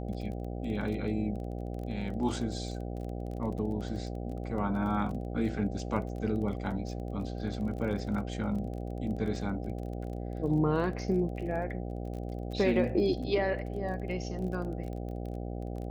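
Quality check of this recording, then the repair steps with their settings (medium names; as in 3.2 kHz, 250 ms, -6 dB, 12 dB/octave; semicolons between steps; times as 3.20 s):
buzz 60 Hz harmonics 13 -37 dBFS
crackle 24 per s -39 dBFS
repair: de-click; de-hum 60 Hz, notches 13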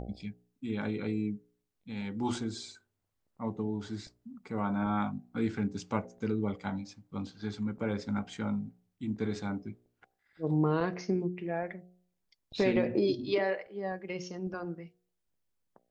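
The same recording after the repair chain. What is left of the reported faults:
nothing left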